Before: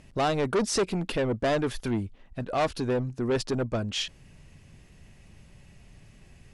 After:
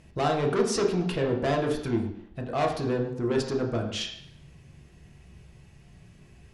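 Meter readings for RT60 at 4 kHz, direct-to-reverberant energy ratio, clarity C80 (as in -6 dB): 0.70 s, 1.0 dB, 9.0 dB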